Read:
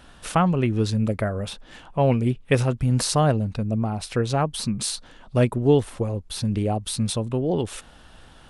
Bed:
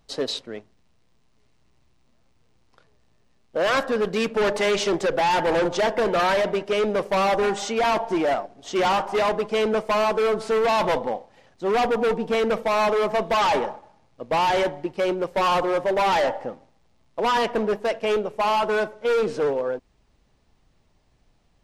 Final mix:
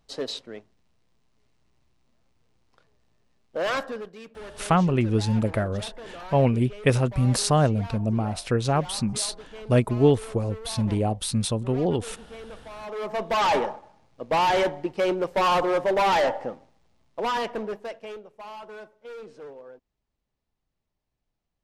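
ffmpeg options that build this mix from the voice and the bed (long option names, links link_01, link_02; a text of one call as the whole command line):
ffmpeg -i stem1.wav -i stem2.wav -filter_complex "[0:a]adelay=4350,volume=-0.5dB[link_01];[1:a]volume=15dB,afade=type=out:start_time=3.7:duration=0.41:silence=0.16788,afade=type=in:start_time=12.82:duration=0.71:silence=0.105925,afade=type=out:start_time=16.56:duration=1.65:silence=0.11885[link_02];[link_01][link_02]amix=inputs=2:normalize=0" out.wav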